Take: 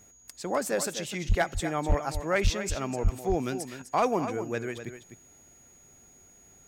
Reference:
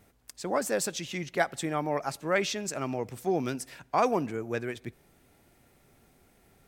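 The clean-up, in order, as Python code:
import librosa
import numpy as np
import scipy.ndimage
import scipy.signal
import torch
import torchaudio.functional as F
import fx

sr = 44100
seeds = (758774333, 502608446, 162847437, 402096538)

y = fx.fix_declip(x, sr, threshold_db=-16.0)
y = fx.notch(y, sr, hz=6700.0, q=30.0)
y = fx.fix_deplosive(y, sr, at_s=(1.28, 1.88, 2.43, 3.03))
y = fx.fix_echo_inverse(y, sr, delay_ms=252, level_db=-10.5)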